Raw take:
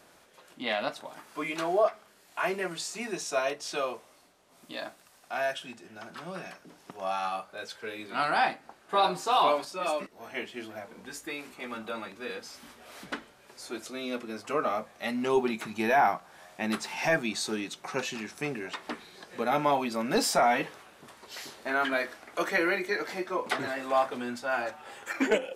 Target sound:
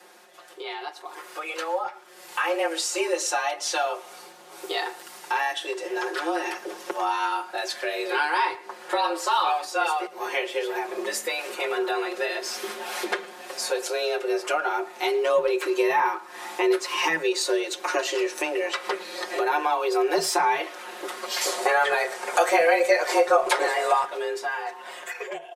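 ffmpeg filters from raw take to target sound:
-filter_complex "[0:a]equalizer=f=220:w=4.9:g=6.5,acompressor=threshold=-42dB:ratio=3,asettb=1/sr,asplit=3[a][b][c];[a]atrim=end=21.414[d];[b]atrim=start=21.41:end=24.05,asetpts=PTS-STARTPTS,afade=t=in:d=0.004:c=qsin,afade=t=out:st=2.636:d=0.004:c=qsin,equalizer=f=250:t=o:w=1:g=4,equalizer=f=500:t=o:w=1:g=6,equalizer=f=1k:t=o:w=1:g=3,equalizer=f=8k:t=o:w=1:g=9[e];[c]atrim=start=24.046[f];[d][e]acrossfade=d=0.004:c1=hsin:c2=qsin[g];[g][f]acrossfade=d=0.004:c1=qsin:c2=hsin,afreqshift=160,aecho=1:1:5.6:0.99,asplit=2[h][i];[i]adelay=110,highpass=300,lowpass=3.4k,asoftclip=type=hard:threshold=-31dB,volume=-18dB[j];[h][j]amix=inputs=2:normalize=0,dynaudnorm=f=390:g=9:m=10dB,volume=3dB"

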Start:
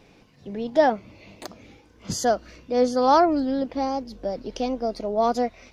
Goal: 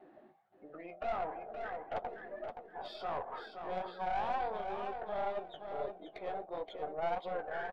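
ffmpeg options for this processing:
-filter_complex "[0:a]aemphasis=mode=reproduction:type=50fm,afftdn=nr=28:nf=-45,afftfilt=real='re*lt(hypot(re,im),0.708)':imag='im*lt(hypot(re,im),0.708)':win_size=1024:overlap=0.75,acrossover=split=1700|4400[a][b][c];[a]acompressor=threshold=-36dB:ratio=4[d];[b]acompressor=threshold=-49dB:ratio=4[e];[c]acompressor=threshold=-57dB:ratio=4[f];[d][e][f]amix=inputs=3:normalize=0,alimiter=level_in=6.5dB:limit=-24dB:level=0:latency=1:release=105,volume=-6.5dB,areverse,acompressor=threshold=-53dB:ratio=6,areverse,highpass=f=980:t=q:w=5.9,asplit=2[g][h];[h]highpass=f=720:p=1,volume=17dB,asoftclip=type=tanh:threshold=-36.5dB[i];[g][i]amix=inputs=2:normalize=0,lowpass=f=1.3k:p=1,volume=-6dB,flanger=delay=6.8:depth=7.5:regen=-27:speed=2:shape=sinusoidal,aeval=exprs='(tanh(178*val(0)+0.5)-tanh(0.5))/178':c=same,aecho=1:1:387|774|1161:0.447|0.107|0.0257,asetrate=32667,aresample=44100,volume=16.5dB"

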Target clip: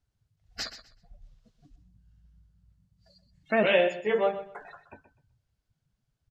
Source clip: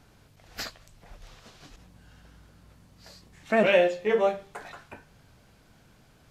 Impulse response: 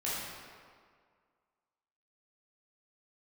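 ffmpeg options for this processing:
-filter_complex "[0:a]afftdn=nr=27:nf=-41,equalizer=f=6.4k:w=0.45:g=6.5,bandreject=f=2.4k:w=26,asplit=2[a][b];[b]aecho=0:1:126|252|378:0.237|0.0498|0.0105[c];[a][c]amix=inputs=2:normalize=0,volume=-2.5dB"

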